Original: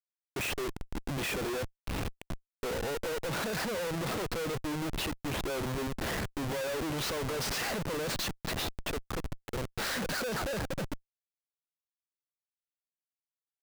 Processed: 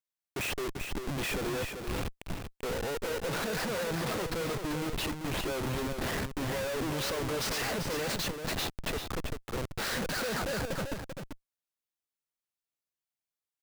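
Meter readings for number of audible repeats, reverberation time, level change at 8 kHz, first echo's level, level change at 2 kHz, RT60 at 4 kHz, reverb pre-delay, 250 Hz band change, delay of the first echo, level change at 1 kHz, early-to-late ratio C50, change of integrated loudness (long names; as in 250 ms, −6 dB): 1, no reverb audible, +1.0 dB, −6.5 dB, +1.0 dB, no reverb audible, no reverb audible, +1.0 dB, 390 ms, +1.0 dB, no reverb audible, +1.0 dB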